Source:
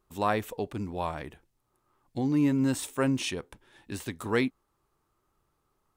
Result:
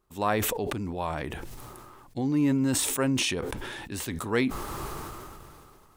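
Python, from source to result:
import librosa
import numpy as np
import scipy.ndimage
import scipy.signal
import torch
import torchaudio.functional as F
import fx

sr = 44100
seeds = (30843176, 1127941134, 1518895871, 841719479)

y = fx.sustainer(x, sr, db_per_s=23.0)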